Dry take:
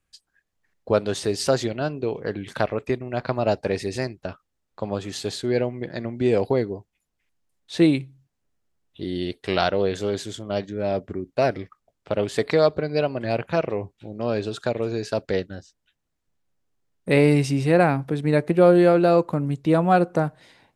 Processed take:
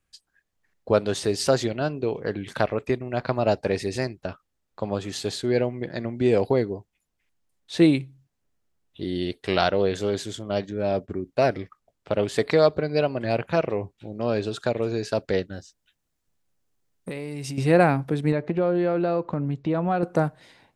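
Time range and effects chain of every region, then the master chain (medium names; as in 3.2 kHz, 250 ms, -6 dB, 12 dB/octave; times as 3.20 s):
10.71–11.21 s: band-stop 2 kHz, Q 17 + expander -43 dBFS
15.55–17.58 s: treble shelf 5.2 kHz +6.5 dB + compression 16:1, threshold -28 dBFS + short-mantissa float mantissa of 6-bit
18.32–20.03 s: Gaussian low-pass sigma 1.7 samples + compression 2.5:1, threshold -22 dBFS
whole clip: none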